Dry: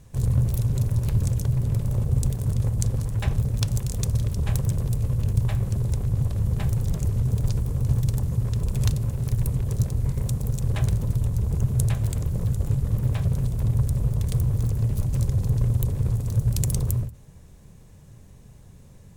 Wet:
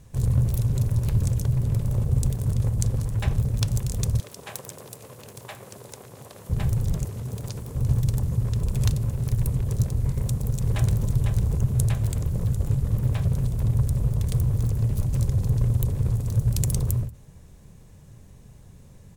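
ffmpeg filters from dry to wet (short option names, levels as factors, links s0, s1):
-filter_complex "[0:a]asettb=1/sr,asplit=3[s0][s1][s2];[s0]atrim=end=4.204[s3];[s1]atrim=start=4.2:end=6.5,asetpts=PTS-STARTPTS,afade=t=in:d=0.004:c=qsin,afade=t=out:st=2.296:d=0.004:c=qsin,highpass=470[s4];[s2]atrim=start=6.496[s5];[s3][s4]acrossfade=d=0.004:c1=hsin:c2=qsin[s6];[s6][s5]acrossfade=d=0.004:c1=qsin:c2=hsin,asettb=1/sr,asplit=3[s7][s8][s9];[s7]atrim=end=7.044[s10];[s8]atrim=start=7.04:end=7.76,asetpts=PTS-STARTPTS,afade=t=in:d=0.004:c=qsin,afade=t=out:st=0.716:d=0.004:c=qsin,highpass=f=300:p=1[s11];[s9]atrim=start=7.756[s12];[s10][s11]acrossfade=d=0.004:c1=hsin:c2=qsin[s13];[s13][s12]acrossfade=d=0.004:c1=qsin:c2=hsin,asplit=2[s14][s15];[s15]afade=t=in:st=10.1:d=0.01,afade=t=out:st=11.05:d=0.01,aecho=0:1:500|1000:0.530884|0.0530884[s16];[s14][s16]amix=inputs=2:normalize=0"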